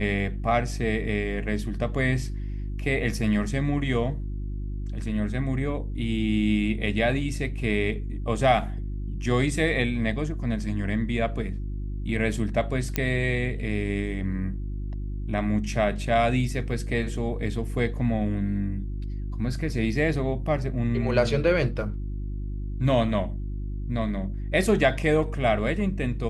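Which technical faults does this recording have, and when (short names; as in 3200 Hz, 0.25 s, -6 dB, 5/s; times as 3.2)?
hum 50 Hz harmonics 7 -31 dBFS
12.96 pop -9 dBFS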